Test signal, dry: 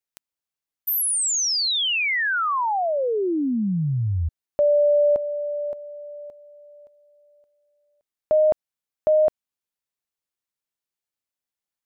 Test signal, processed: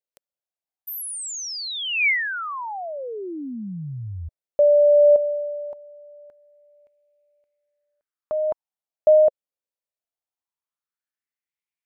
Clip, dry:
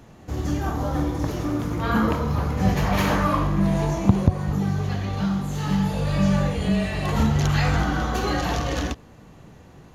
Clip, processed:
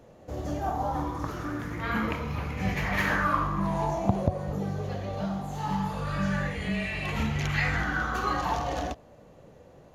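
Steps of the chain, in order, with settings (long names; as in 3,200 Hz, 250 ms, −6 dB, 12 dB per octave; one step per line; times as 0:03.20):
auto-filter bell 0.21 Hz 530–2,400 Hz +14 dB
level −9 dB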